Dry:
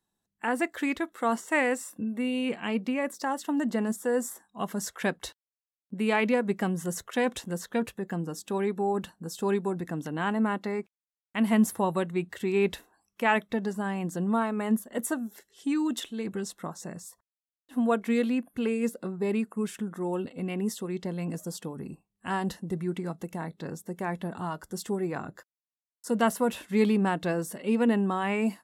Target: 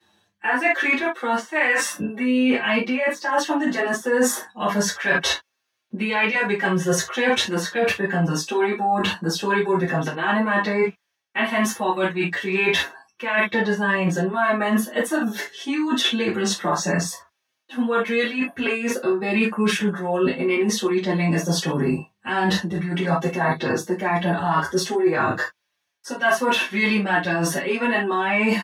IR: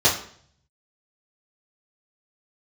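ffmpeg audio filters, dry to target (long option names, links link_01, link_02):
-filter_complex "[0:a]acrossover=split=780[link_01][link_02];[link_01]alimiter=limit=-23dB:level=0:latency=1:release=361[link_03];[link_03][link_02]amix=inputs=2:normalize=0,highpass=110,equalizer=frequency=2000:width_type=o:width=2.1:gain=11.5[link_04];[1:a]atrim=start_sample=2205,atrim=end_sample=3528,asetrate=41013,aresample=44100[link_05];[link_04][link_05]afir=irnorm=-1:irlink=0,areverse,acompressor=threshold=-17dB:ratio=10,areverse,asplit=2[link_06][link_07];[link_07]adelay=6.1,afreqshift=-0.67[link_08];[link_06][link_08]amix=inputs=2:normalize=1,volume=2dB"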